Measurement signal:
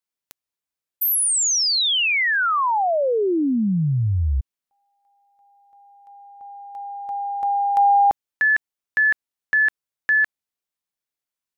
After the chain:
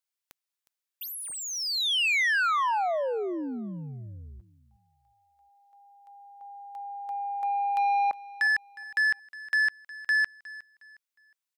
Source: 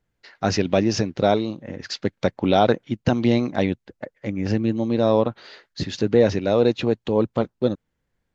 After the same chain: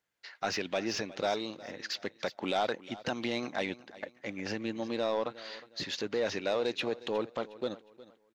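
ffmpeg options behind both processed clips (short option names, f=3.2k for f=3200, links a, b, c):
-filter_complex "[0:a]alimiter=limit=-10.5dB:level=0:latency=1:release=101,highpass=f=1.2k:p=1,asoftclip=type=tanh:threshold=-21dB,aecho=1:1:361|722|1083:0.119|0.0368|0.0114,acrossover=split=3900[a][b];[b]acompressor=threshold=-39dB:ratio=4:attack=1:release=60[c];[a][c]amix=inputs=2:normalize=0"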